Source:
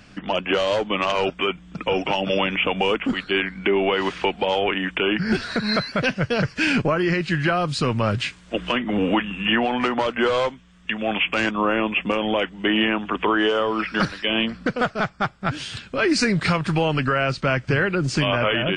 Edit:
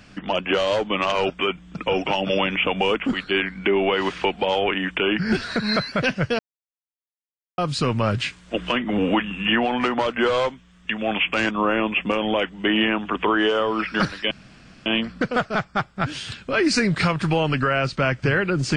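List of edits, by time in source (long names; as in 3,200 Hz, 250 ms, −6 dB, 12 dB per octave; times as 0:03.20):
0:06.39–0:07.58: silence
0:14.31: splice in room tone 0.55 s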